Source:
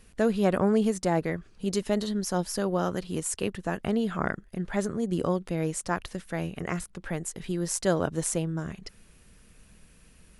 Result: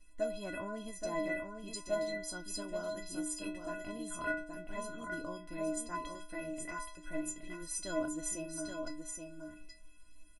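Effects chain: bass shelf 140 Hz +7.5 dB; inharmonic resonator 300 Hz, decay 0.61 s, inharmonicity 0.03; delay 824 ms -5.5 dB; trim +9 dB

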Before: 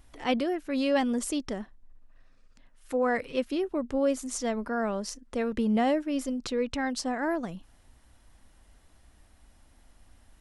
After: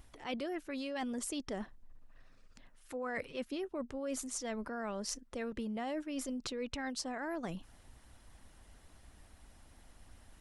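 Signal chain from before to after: harmonic-percussive split percussive +6 dB; reverse; compression 6:1, threshold -34 dBFS, peak gain reduction 14 dB; reverse; trim -2.5 dB

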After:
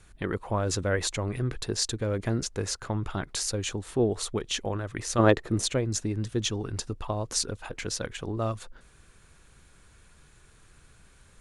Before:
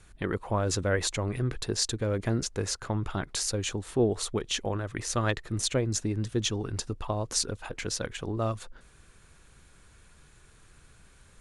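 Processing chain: 5.18–5.71 s: peaking EQ 400 Hz +14.5 dB -> +5.5 dB 2.8 oct

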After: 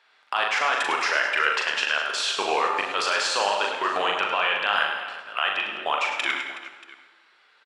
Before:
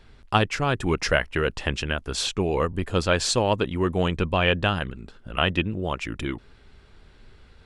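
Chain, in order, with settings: high-pass 960 Hz 12 dB/octave; level held to a coarse grid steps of 19 dB; reverse bouncing-ball echo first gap 40 ms, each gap 1.6×, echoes 5; overdrive pedal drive 12 dB, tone 2.1 kHz, clips at -7.5 dBFS; on a send at -6 dB: reverberation RT60 1.2 s, pre-delay 52 ms; on the sum: trim +9 dB

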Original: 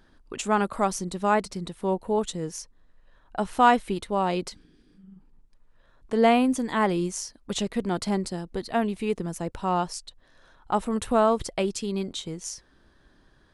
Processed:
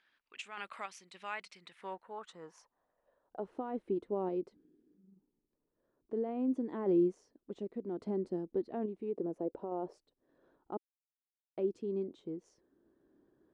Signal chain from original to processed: 9.14–9.98 s: peaking EQ 570 Hz +12.5 dB 1.7 oct; peak limiter -17 dBFS, peak gain reduction 11.5 dB; random-step tremolo; 10.77–11.57 s: mute; band-pass sweep 2.4 kHz -> 350 Hz, 1.59–3.65 s; trim +1 dB

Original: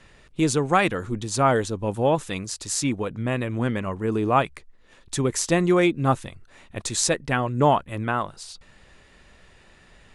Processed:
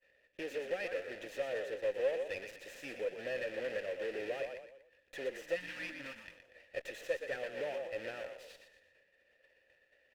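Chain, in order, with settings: block-companded coder 3-bit; hum 60 Hz, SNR 29 dB; peaking EQ 140 Hz -13.5 dB 2.1 oct; compression 2.5:1, threshold -36 dBFS, peak gain reduction 14 dB; expander -42 dBFS; frequency-shifting echo 119 ms, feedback 37%, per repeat -46 Hz, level -9 dB; spectral replace 5.58–6.48 s, 330–860 Hz after; valve stage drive 33 dB, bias 0.35; vowel filter e; peaking EQ 4.5 kHz -5 dB 0.38 oct; sliding maximum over 3 samples; trim +11 dB

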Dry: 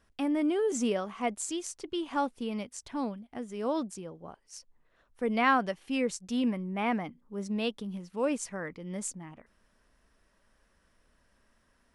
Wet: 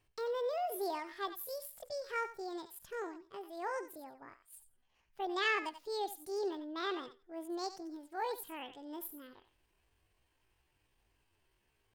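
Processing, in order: thinning echo 84 ms, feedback 16%, high-pass 530 Hz, level -10 dB; pitch shift +8.5 st; trim -8 dB

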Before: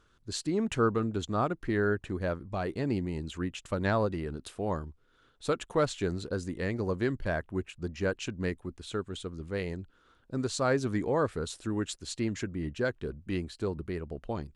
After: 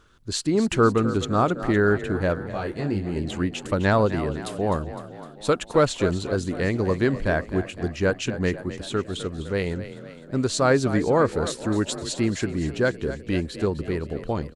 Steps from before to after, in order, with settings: frequency-shifting echo 255 ms, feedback 59%, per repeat +34 Hz, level -13 dB; 2.51–3.15 s: detune thickener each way 16 cents -> 35 cents; trim +8 dB

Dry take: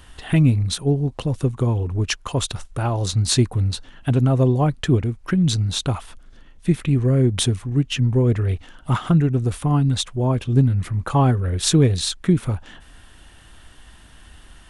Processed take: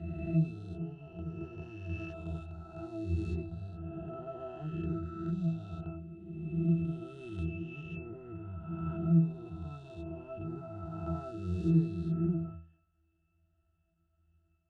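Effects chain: reverse spectral sustain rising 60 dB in 2.93 s; power-law waveshaper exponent 1.4; pitch-class resonator E, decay 0.4 s

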